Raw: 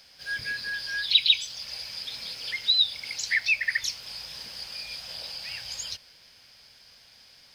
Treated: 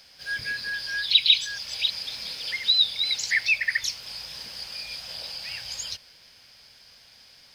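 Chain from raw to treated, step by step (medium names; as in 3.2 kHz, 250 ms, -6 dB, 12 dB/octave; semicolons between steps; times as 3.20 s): 0.91–3.63 s: chunks repeated in reverse 334 ms, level -6.5 dB; trim +1.5 dB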